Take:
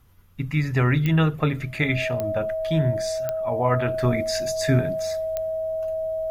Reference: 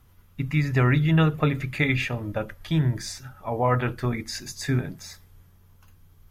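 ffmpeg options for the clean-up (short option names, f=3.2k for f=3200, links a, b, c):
-af "adeclick=t=4,bandreject=f=640:w=30,asetnsamples=n=441:p=0,asendcmd='3.94 volume volume -4dB',volume=0dB"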